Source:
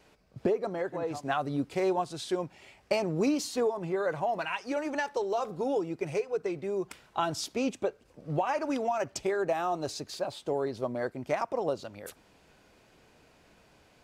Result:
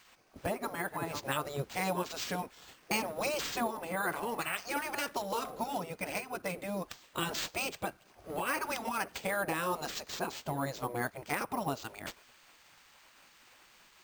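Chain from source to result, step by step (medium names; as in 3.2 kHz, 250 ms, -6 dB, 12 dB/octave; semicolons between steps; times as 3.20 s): spectral gate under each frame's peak -10 dB weak; in parallel at 0 dB: peak limiter -30.5 dBFS, peak gain reduction 9 dB; on the sum: careless resampling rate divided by 4×, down none, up hold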